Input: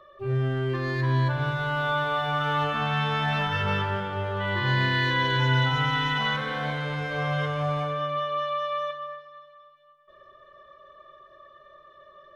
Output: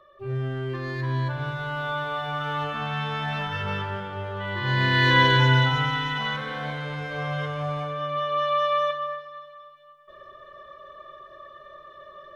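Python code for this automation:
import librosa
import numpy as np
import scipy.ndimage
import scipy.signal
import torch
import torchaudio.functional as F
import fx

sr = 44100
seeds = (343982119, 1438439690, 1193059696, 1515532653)

y = fx.gain(x, sr, db=fx.line((4.56, -3.0), (5.18, 7.5), (6.05, -2.0), (7.94, -2.0), (8.6, 6.0)))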